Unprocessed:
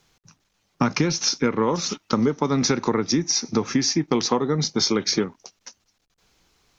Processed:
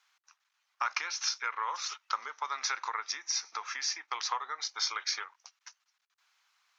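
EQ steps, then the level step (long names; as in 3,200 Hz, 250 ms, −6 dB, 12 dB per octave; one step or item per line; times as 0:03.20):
high-pass filter 1,100 Hz 24 dB per octave
high-shelf EQ 2,800 Hz −12 dB
0.0 dB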